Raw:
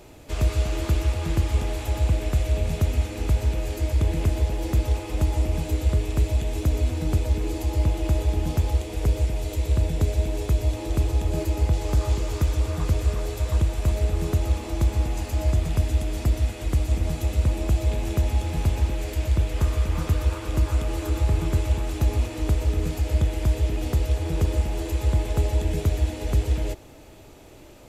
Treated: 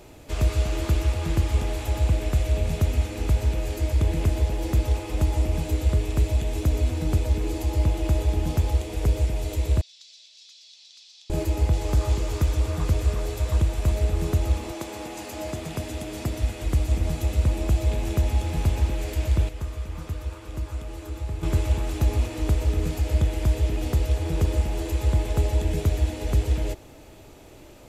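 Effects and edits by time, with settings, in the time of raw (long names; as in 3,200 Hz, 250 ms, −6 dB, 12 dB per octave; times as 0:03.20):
0:09.81–0:11.30: flat-topped band-pass 4,500 Hz, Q 2.1
0:14.71–0:16.42: high-pass filter 340 Hz → 100 Hz
0:19.49–0:21.43: clip gain −9 dB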